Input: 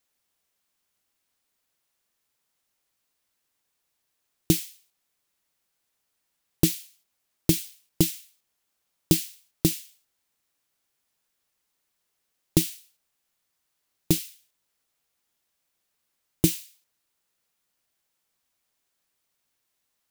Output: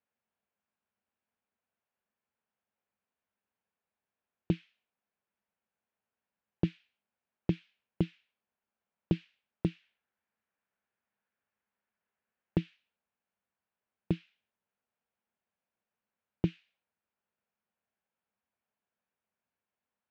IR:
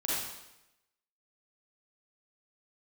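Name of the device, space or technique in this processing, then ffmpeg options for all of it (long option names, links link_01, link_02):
bass cabinet: -filter_complex "[0:a]asettb=1/sr,asplit=3[link_01][link_02][link_03];[link_01]atrim=end=9.824[link_04];[link_02]atrim=start=9.82:end=12.58,asetpts=PTS-STARTPTS,afade=type=in:duration=0.004:curve=qsin,afade=type=out:start_time=2.756:duration=0.004:curve=qsin,equalizer=frequency=1700:width_type=o:width=0.98:gain=5[link_05];[link_03]atrim=start=12.576[link_06];[link_04][link_05]acrossfade=duration=0.004:curve1=hsin:curve2=qsin[link_07];[link_07][link_06]acrossfade=duration=0.004:curve1=qsin:curve2=hsin,highpass=74,equalizer=frequency=140:width_type=q:width=4:gain=-7,equalizer=frequency=210:width_type=q:width=4:gain=7,equalizer=frequency=310:width_type=q:width=4:gain=-8,equalizer=frequency=1200:width_type=q:width=4:gain=-4,equalizer=frequency=2000:width_type=q:width=4:gain=-6,lowpass=frequency=2300:width=0.5412,lowpass=frequency=2300:width=1.3066,volume=-4.5dB"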